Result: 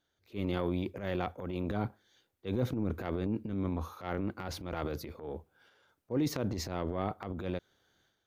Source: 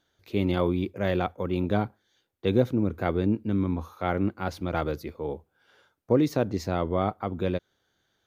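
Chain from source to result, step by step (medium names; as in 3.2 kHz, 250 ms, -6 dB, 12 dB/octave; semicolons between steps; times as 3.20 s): transient shaper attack -9 dB, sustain +9 dB; trim -7.5 dB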